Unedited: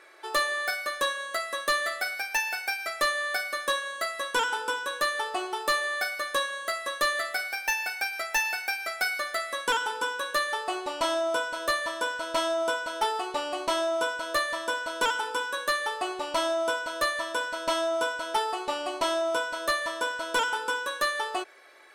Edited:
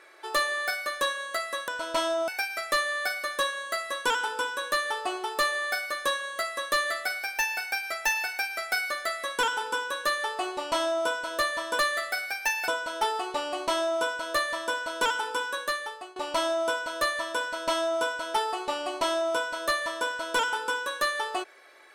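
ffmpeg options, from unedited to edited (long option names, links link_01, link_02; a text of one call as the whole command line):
ffmpeg -i in.wav -filter_complex "[0:a]asplit=6[link_01][link_02][link_03][link_04][link_05][link_06];[link_01]atrim=end=1.682[link_07];[link_02]atrim=start=12.078:end=12.682[link_08];[link_03]atrim=start=2.568:end=12.082[link_09];[link_04]atrim=start=1.678:end=2.572[link_10];[link_05]atrim=start=12.678:end=16.16,asetpts=PTS-STARTPTS,afade=type=out:start_time=2.842:duration=0.64:silence=0.1[link_11];[link_06]atrim=start=16.16,asetpts=PTS-STARTPTS,afade=type=in:duration=0.004:curve=hsin:silence=0.1[link_12];[link_07][link_08]acrossfade=duration=0.004:curve1=hsin:curve2=hsin[link_13];[link_13][link_09]acrossfade=duration=0.004:curve1=hsin:curve2=hsin[link_14];[link_14][link_10]acrossfade=duration=0.004:curve1=hsin:curve2=hsin[link_15];[link_11][link_12]concat=n=2:v=0:a=1[link_16];[link_15][link_16]acrossfade=duration=0.004:curve1=hsin:curve2=hsin" out.wav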